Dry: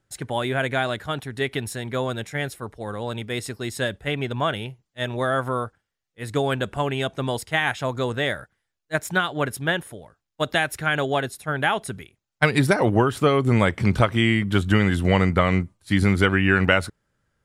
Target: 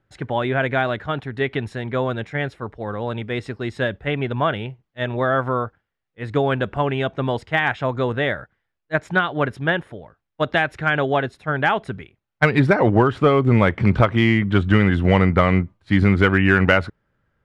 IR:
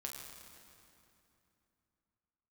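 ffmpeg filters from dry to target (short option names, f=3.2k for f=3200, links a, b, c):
-filter_complex "[0:a]lowpass=2.6k,asplit=2[a][b];[b]asoftclip=type=hard:threshold=-12dB,volume=-6dB[c];[a][c]amix=inputs=2:normalize=0"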